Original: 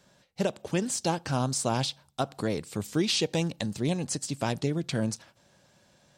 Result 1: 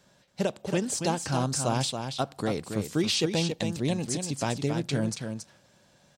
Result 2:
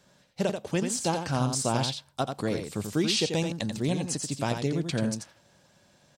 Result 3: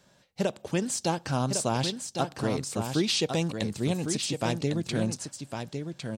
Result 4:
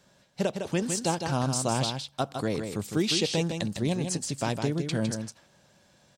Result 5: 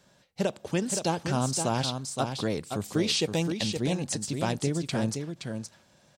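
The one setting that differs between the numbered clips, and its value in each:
delay, time: 277 ms, 87 ms, 1105 ms, 157 ms, 520 ms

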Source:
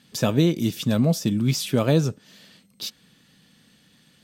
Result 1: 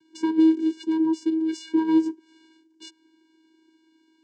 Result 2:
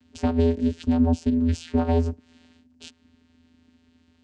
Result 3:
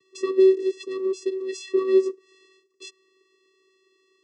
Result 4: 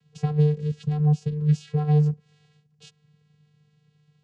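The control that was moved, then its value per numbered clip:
vocoder, frequency: 320 Hz, 83 Hz, 380 Hz, 150 Hz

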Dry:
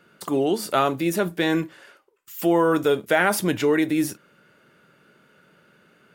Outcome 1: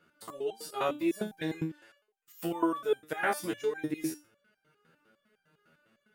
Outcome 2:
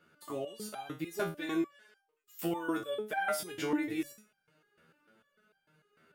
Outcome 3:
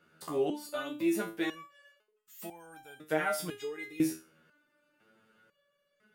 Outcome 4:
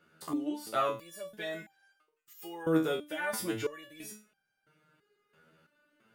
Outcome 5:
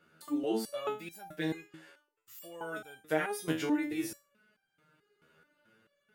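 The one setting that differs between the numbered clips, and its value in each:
resonator arpeggio, rate: 9.9 Hz, 6.7 Hz, 2 Hz, 3 Hz, 4.6 Hz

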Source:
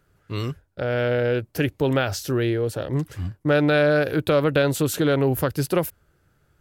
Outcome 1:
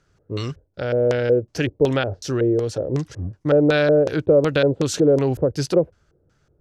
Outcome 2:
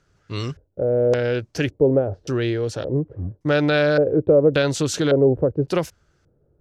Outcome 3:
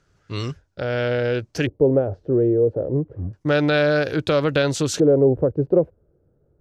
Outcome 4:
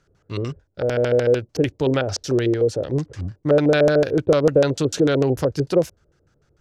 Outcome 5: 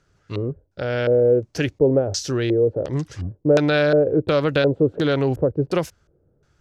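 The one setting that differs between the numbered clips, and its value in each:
LFO low-pass, rate: 2.7 Hz, 0.88 Hz, 0.3 Hz, 6.7 Hz, 1.4 Hz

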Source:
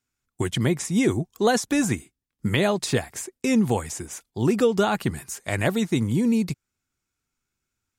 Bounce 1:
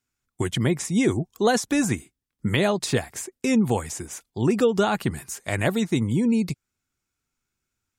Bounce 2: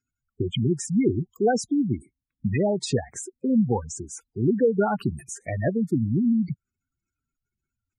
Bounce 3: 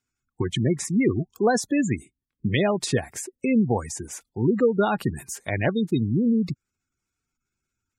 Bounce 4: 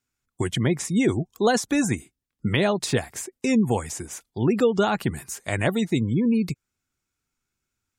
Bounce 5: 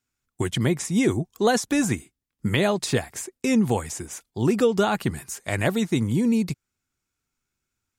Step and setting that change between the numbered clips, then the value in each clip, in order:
spectral gate, under each frame's peak: -45 dB, -10 dB, -20 dB, -35 dB, -60 dB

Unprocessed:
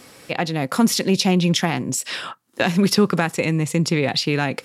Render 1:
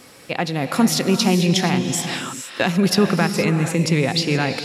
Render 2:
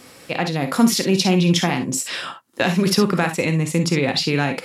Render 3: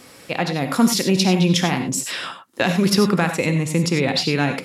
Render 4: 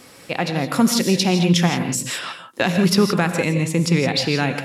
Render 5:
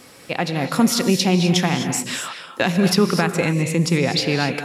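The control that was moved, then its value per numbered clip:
gated-style reverb, gate: 500 ms, 80 ms, 120 ms, 190 ms, 280 ms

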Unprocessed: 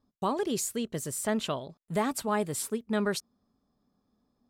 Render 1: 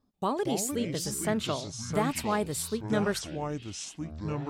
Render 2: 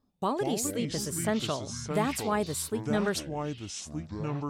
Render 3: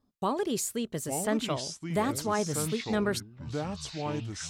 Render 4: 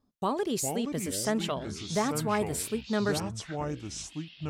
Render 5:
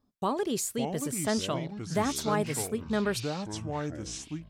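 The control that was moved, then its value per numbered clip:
ever faster or slower copies, time: 138 ms, 93 ms, 762 ms, 311 ms, 464 ms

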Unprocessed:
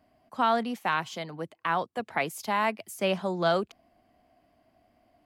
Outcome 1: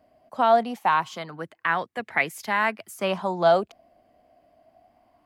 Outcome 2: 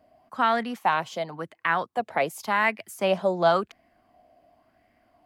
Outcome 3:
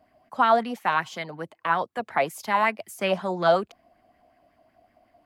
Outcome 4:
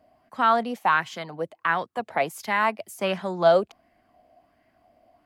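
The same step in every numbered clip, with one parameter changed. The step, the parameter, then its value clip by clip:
sweeping bell, rate: 0.24 Hz, 0.92 Hz, 5.4 Hz, 1.4 Hz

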